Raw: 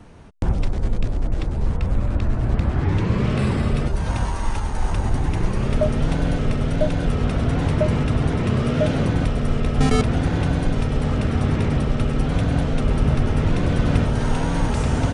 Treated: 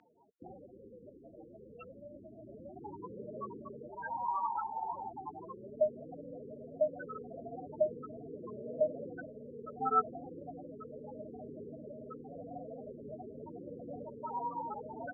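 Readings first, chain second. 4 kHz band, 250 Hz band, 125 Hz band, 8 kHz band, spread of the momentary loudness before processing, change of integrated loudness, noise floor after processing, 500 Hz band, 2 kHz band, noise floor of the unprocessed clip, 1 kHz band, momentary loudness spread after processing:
below −40 dB, −24.5 dB, −35.5 dB, below −40 dB, 5 LU, −17.5 dB, −56 dBFS, −11.5 dB, −21.5 dB, −25 dBFS, −7.5 dB, 18 LU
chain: spectral peaks only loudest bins 16
four-pole ladder band-pass 1,800 Hz, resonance 30%
level +17.5 dB

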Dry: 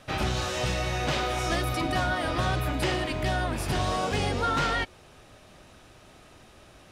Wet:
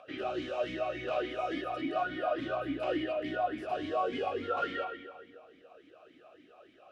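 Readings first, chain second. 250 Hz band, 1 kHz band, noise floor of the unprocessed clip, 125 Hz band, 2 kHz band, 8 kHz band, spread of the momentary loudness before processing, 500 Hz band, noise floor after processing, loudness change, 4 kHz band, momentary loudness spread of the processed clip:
−4.5 dB, −5.5 dB, −53 dBFS, −21.5 dB, −9.5 dB, below −25 dB, 2 LU, −1.5 dB, −60 dBFS, −6.5 dB, −12.5 dB, 4 LU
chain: parametric band 710 Hz +4.5 dB 2.2 octaves
echo with a time of its own for lows and highs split 940 Hz, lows 284 ms, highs 120 ms, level −15 dB
spring reverb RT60 1.3 s, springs 32/45 ms, chirp 80 ms, DRR 3.5 dB
upward compression, threshold −41 dBFS
formant filter swept between two vowels a-i 3.5 Hz

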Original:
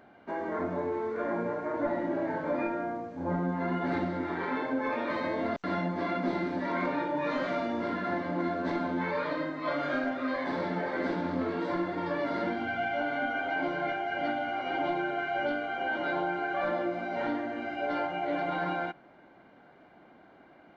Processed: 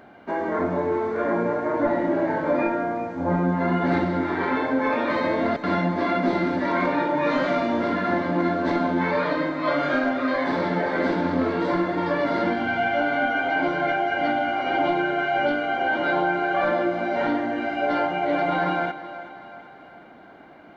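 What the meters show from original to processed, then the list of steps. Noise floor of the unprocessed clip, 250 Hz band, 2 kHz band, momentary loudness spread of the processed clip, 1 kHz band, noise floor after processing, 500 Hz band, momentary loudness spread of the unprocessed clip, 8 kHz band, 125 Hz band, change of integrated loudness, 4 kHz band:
−57 dBFS, +8.0 dB, +8.0 dB, 3 LU, +8.5 dB, −46 dBFS, +8.0 dB, 2 LU, can't be measured, +8.5 dB, +8.5 dB, +8.0 dB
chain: echo with a time of its own for lows and highs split 510 Hz, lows 203 ms, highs 377 ms, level −14 dB
level +8 dB

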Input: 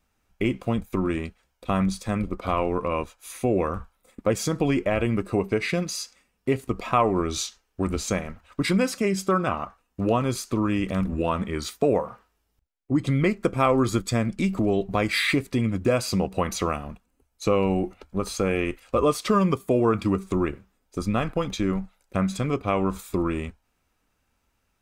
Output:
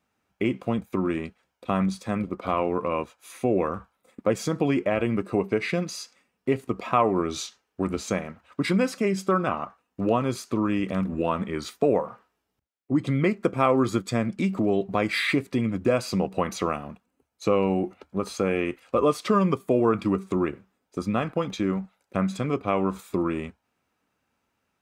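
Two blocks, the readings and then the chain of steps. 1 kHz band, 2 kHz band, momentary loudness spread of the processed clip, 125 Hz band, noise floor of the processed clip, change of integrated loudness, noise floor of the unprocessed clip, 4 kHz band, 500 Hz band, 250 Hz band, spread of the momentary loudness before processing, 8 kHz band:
−0.5 dB, −1.5 dB, 10 LU, −3.0 dB, −78 dBFS, −0.5 dB, −73 dBFS, −3.5 dB, 0.0 dB, −0.5 dB, 9 LU, −5.5 dB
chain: high-pass filter 130 Hz 12 dB per octave
high-shelf EQ 4,300 Hz −7.5 dB

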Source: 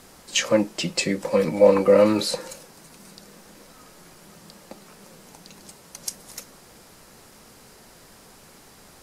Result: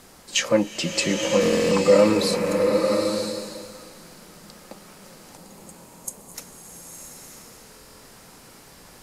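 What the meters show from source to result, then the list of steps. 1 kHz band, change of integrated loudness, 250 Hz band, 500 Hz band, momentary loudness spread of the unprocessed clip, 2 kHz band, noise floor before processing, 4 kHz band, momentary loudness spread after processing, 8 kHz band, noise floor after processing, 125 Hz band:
+1.0 dB, 0.0 dB, +1.5 dB, +0.5 dB, 22 LU, +2.5 dB, −50 dBFS, +2.0 dB, 22 LU, +2.0 dB, −49 dBFS, +1.5 dB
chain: gain on a spectral selection 0:05.37–0:06.34, 1,200–6,400 Hz −17 dB
buffer that repeats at 0:01.41/0:05.74/0:07.71, samples 1,024, times 12
slow-attack reverb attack 960 ms, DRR 2 dB

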